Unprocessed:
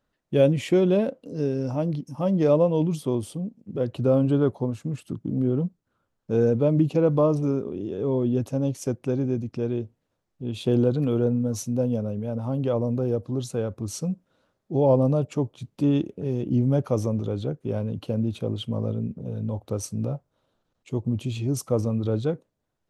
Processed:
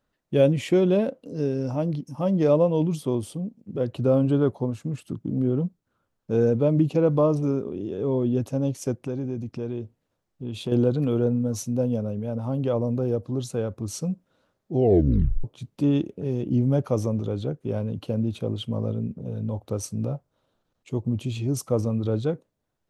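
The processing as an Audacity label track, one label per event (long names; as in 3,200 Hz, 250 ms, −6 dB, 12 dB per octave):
9.070000	10.720000	downward compressor 2 to 1, threshold −28 dBFS
14.740000	14.740000	tape stop 0.70 s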